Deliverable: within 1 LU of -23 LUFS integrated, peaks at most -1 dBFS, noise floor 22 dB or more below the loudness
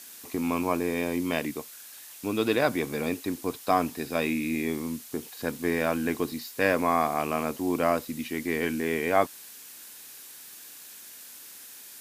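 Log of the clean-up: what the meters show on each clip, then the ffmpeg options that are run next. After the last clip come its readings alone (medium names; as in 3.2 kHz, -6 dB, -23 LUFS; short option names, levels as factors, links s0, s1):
noise floor -46 dBFS; noise floor target -51 dBFS; loudness -28.5 LUFS; peak level -7.5 dBFS; loudness target -23.0 LUFS
-> -af "afftdn=nr=6:nf=-46"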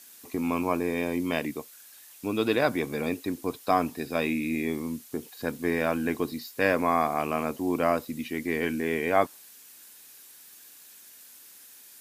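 noise floor -51 dBFS; loudness -28.5 LUFS; peak level -7.5 dBFS; loudness target -23.0 LUFS
-> -af "volume=1.88"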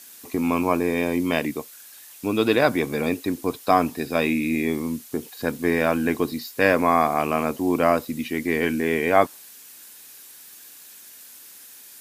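loudness -23.0 LUFS; peak level -2.5 dBFS; noise floor -46 dBFS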